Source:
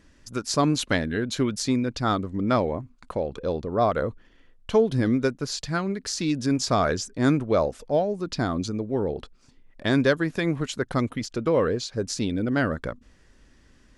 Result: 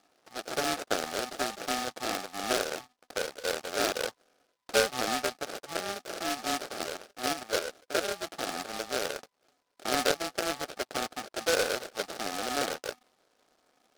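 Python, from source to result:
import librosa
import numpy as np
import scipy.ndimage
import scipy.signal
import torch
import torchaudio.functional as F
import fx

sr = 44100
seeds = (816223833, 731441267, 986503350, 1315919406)

y = fx.sample_hold(x, sr, seeds[0], rate_hz=1000.0, jitter_pct=0)
y = fx.level_steps(y, sr, step_db=10, at=(6.62, 8.04))
y = fx.bandpass_edges(y, sr, low_hz=640.0, high_hz=2600.0)
y = fx.noise_mod_delay(y, sr, seeds[1], noise_hz=3200.0, depth_ms=0.1)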